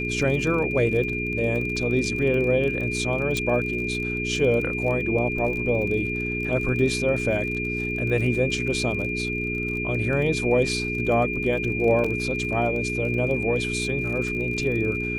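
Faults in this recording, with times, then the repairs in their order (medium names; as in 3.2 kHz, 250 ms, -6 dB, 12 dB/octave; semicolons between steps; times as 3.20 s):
crackle 34 per s -31 dBFS
hum 60 Hz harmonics 7 -30 dBFS
whine 2.4 kHz -28 dBFS
3.37 s: pop -13 dBFS
12.04 s: dropout 4.7 ms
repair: de-click; de-hum 60 Hz, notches 7; band-stop 2.4 kHz, Q 30; interpolate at 12.04 s, 4.7 ms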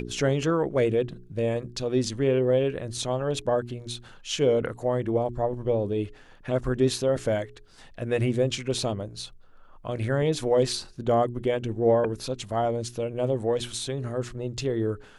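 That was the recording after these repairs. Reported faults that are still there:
nothing left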